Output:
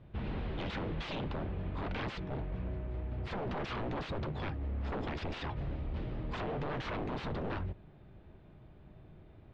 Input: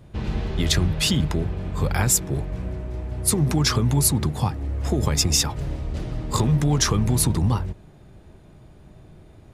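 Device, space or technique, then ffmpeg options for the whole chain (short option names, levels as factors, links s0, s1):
synthesiser wavefolder: -af "aeval=exprs='0.0668*(abs(mod(val(0)/0.0668+3,4)-2)-1)':c=same,lowpass=f=3500:w=0.5412,lowpass=f=3500:w=1.3066,volume=0.398"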